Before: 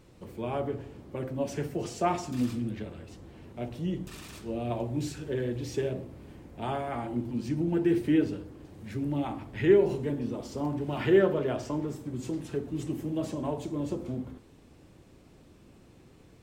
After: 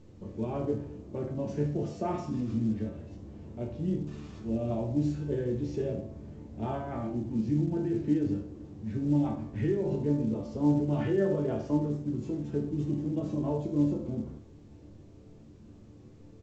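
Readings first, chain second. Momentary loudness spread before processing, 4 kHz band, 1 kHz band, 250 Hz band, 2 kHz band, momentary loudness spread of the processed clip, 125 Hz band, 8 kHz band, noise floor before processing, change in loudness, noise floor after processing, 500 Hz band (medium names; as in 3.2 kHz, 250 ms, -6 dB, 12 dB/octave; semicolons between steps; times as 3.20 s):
17 LU, no reading, -5.0 dB, +1.0 dB, -9.5 dB, 12 LU, +3.0 dB, under -10 dB, -56 dBFS, -0.5 dB, -52 dBFS, -4.0 dB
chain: tilt shelf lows +8.5 dB, about 780 Hz; peak limiter -17 dBFS, peak gain reduction 11.5 dB; chord resonator D2 sus4, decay 0.36 s; delay 80 ms -15 dB; trim +9 dB; A-law 128 kbps 16 kHz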